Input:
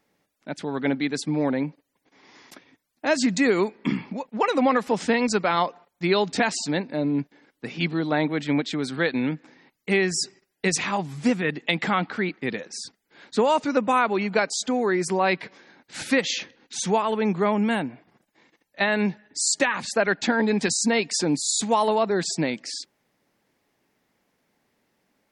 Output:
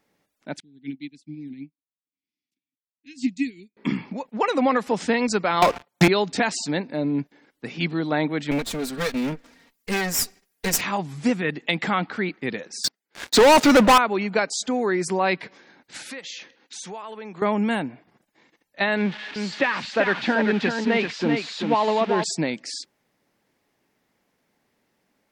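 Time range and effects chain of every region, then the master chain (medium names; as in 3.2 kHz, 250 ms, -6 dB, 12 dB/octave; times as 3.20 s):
0.60–3.77 s: elliptic band-stop 300–2400 Hz, stop band 50 dB + treble shelf 5.8 kHz -3 dB + upward expansion 2.5:1, over -42 dBFS
5.62–6.08 s: high-pass 89 Hz 24 dB/octave + waveshaping leveller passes 5 + three bands compressed up and down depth 100%
8.51–10.81 s: comb filter that takes the minimum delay 4.3 ms + treble shelf 7.1 kHz +10.5 dB
12.84–13.98 s: high-pass 300 Hz 6 dB/octave + waveshaping leveller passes 5
15.97–17.42 s: high-pass 450 Hz 6 dB/octave + compression 3:1, threshold -36 dBFS
18.97–22.24 s: zero-crossing glitches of -15 dBFS + low-pass 3.3 kHz 24 dB/octave + delay 388 ms -5.5 dB
whole clip: none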